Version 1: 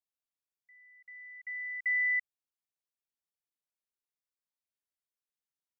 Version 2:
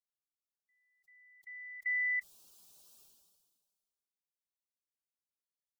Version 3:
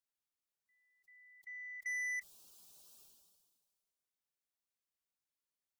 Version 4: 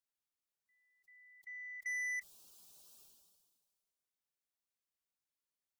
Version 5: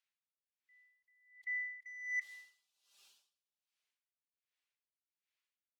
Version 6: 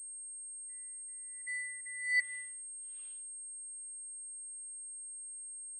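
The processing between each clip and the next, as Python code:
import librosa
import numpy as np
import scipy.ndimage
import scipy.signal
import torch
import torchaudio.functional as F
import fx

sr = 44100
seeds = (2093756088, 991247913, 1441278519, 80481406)

y1 = fx.bin_expand(x, sr, power=1.5)
y1 = fx.sustainer(y1, sr, db_per_s=35.0)
y1 = y1 * librosa.db_to_amplitude(-3.5)
y2 = 10.0 ** (-36.5 / 20.0) * np.tanh(y1 / 10.0 ** (-36.5 / 20.0))
y3 = y2
y4 = fx.bandpass_q(y3, sr, hz=2400.0, q=1.5)
y4 = fx.rev_plate(y4, sr, seeds[0], rt60_s=1.1, hf_ratio=0.9, predelay_ms=0, drr_db=19.0)
y4 = y4 * 10.0 ** (-22 * (0.5 - 0.5 * np.cos(2.0 * np.pi * 1.3 * np.arange(len(y4)) / sr)) / 20.0)
y4 = y4 * librosa.db_to_amplitude(11.5)
y5 = y4 + 0.87 * np.pad(y4, (int(5.6 * sr / 1000.0), 0))[:len(y4)]
y5 = fx.filter_sweep_lowpass(y5, sr, from_hz=1200.0, to_hz=2800.0, start_s=1.64, end_s=2.73, q=1.4)
y5 = fx.pwm(y5, sr, carrier_hz=8500.0)
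y5 = y5 * librosa.db_to_amplitude(1.0)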